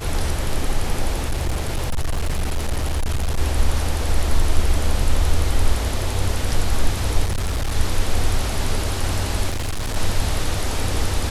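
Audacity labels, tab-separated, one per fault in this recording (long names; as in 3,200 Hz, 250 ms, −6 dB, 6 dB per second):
1.280000	3.390000	clipping −17 dBFS
4.420000	4.420000	drop-out 2.8 ms
7.240000	7.760000	clipping −18 dBFS
9.500000	9.970000	clipping −20.5 dBFS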